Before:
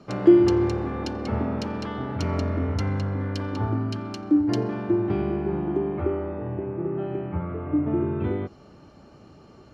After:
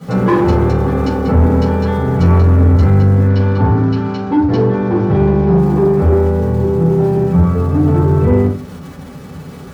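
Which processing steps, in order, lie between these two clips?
bass shelf 280 Hz +5.5 dB; hard clipper -13.5 dBFS, distortion -12 dB; crackle 400 per s -34 dBFS; treble shelf 3.4 kHz -7.5 dB; reverberation RT60 0.40 s, pre-delay 3 ms, DRR -12.5 dB; saturation -4 dBFS, distortion -16 dB; 3.28–5.58 s: low-pass 5.5 kHz 24 dB/octave

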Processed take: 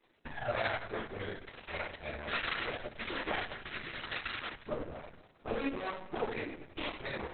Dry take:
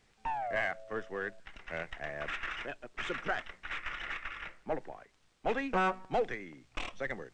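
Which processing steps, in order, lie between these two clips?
high-pass 320 Hz 12 dB/octave; tilt EQ -2.5 dB/octave; peak limiter -29.5 dBFS, peak gain reduction 9.5 dB; flange 0.3 Hz, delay 2.5 ms, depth 9.2 ms, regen +43%; half-wave rectifier; rotary cabinet horn 1.1 Hz, later 7.5 Hz, at 5.66 s; reverberation, pre-delay 3 ms, DRR -7 dB; trim +7.5 dB; Opus 6 kbps 48 kHz

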